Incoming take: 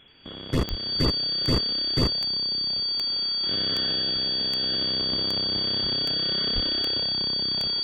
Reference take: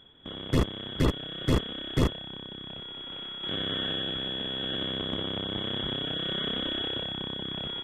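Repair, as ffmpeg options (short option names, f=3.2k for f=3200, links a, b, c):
-filter_complex "[0:a]adeclick=t=4,bandreject=f=4.6k:w=30,asplit=3[a][b][c];[a]afade=t=out:st=0.69:d=0.02[d];[b]highpass=f=140:w=0.5412,highpass=f=140:w=1.3066,afade=t=in:st=0.69:d=0.02,afade=t=out:st=0.81:d=0.02[e];[c]afade=t=in:st=0.81:d=0.02[f];[d][e][f]amix=inputs=3:normalize=0,asplit=3[g][h][i];[g]afade=t=out:st=6.54:d=0.02[j];[h]highpass=f=140:w=0.5412,highpass=f=140:w=1.3066,afade=t=in:st=6.54:d=0.02,afade=t=out:st=6.66:d=0.02[k];[i]afade=t=in:st=6.66:d=0.02[l];[j][k][l]amix=inputs=3:normalize=0,afftdn=nr=13:nf=-27"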